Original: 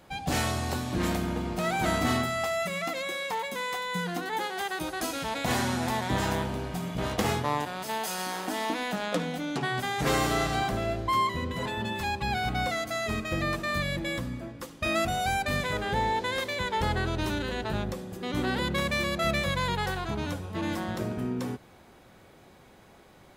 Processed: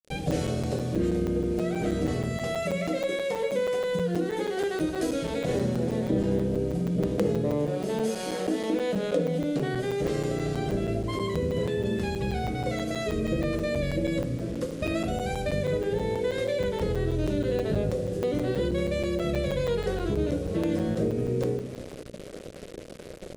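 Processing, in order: 5.54–8.05 s: peaking EQ 250 Hz +9 dB 2.3 oct; reverberation RT60 0.45 s, pre-delay 6 ms, DRR 3 dB; gain riding within 4 dB 0.5 s; bit crusher 7-bit; low-pass 11 kHz 24 dB/octave; resonant low shelf 680 Hz +8.5 dB, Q 3; compression 2:1, threshold -31 dBFS, peak gain reduction 12.5 dB; hum notches 60/120/180/240/300/360/420 Hz; crackling interface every 0.16 s, samples 256, zero, from 0.31 s

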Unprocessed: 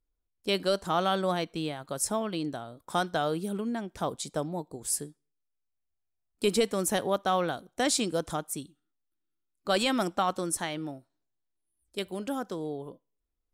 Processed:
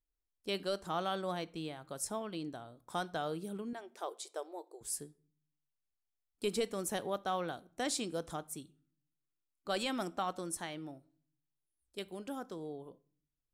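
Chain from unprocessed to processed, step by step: 3.73–4.81 s: brick-wall FIR high-pass 320 Hz; reverberation RT60 0.50 s, pre-delay 3 ms, DRR 17.5 dB; trim -9 dB

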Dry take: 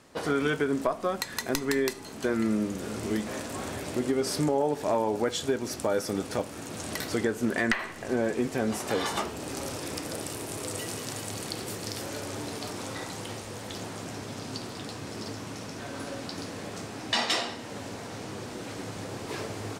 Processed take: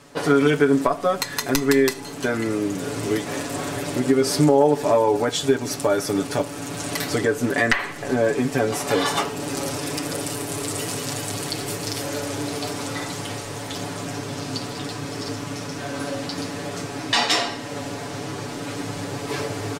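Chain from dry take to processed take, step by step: comb 7 ms, depth 80%; trim +5.5 dB

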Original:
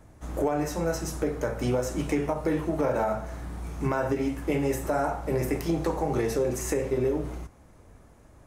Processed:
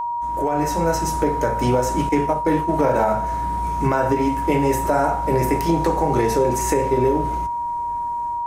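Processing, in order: 2.09–2.74 s: expander -25 dBFS; level rider gain up to 13 dB; whistle 950 Hz -17 dBFS; trim -5 dB

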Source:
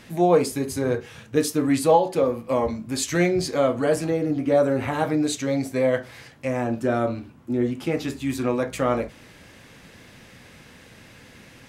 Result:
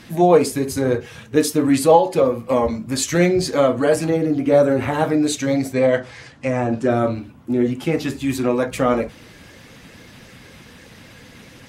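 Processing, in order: coarse spectral quantiser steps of 15 dB; 5.73–6.90 s: low-pass 8.8 kHz 24 dB/octave; trim +5 dB

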